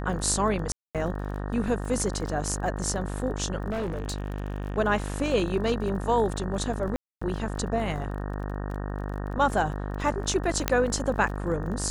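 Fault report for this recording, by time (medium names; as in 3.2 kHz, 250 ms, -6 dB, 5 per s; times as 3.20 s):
buzz 50 Hz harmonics 37 -32 dBFS
crackle 32 per s -36 dBFS
0.72–0.95 s: dropout 227 ms
3.70–4.78 s: clipped -26.5 dBFS
6.96–7.21 s: dropout 255 ms
10.68 s: pop -6 dBFS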